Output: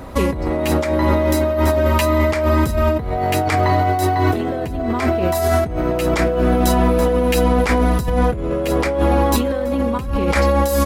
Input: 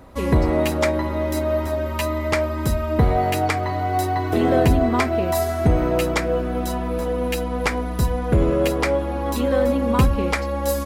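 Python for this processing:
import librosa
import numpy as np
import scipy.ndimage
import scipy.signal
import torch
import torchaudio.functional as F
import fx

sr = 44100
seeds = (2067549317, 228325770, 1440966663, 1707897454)

y = fx.over_compress(x, sr, threshold_db=-25.0, ratio=-1.0)
y = y * 10.0 ** (7.5 / 20.0)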